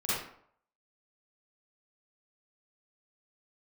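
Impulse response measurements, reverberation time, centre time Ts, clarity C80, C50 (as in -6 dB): 0.65 s, 77 ms, 2.0 dB, -5.0 dB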